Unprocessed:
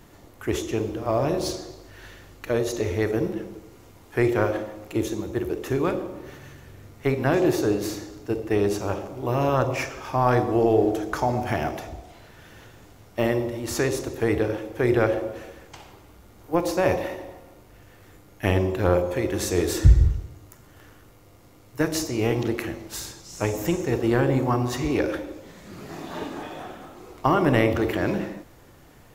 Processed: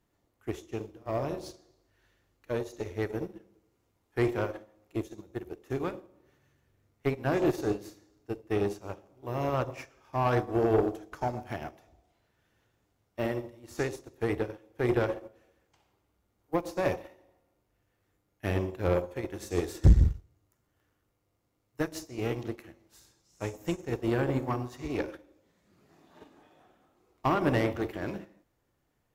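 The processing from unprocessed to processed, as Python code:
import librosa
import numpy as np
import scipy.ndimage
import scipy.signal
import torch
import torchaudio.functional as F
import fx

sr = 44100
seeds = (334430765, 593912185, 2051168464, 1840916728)

y = fx.tube_stage(x, sr, drive_db=16.0, bias=0.45)
y = fx.upward_expand(y, sr, threshold_db=-35.0, expansion=2.5)
y = y * librosa.db_to_amplitude(4.5)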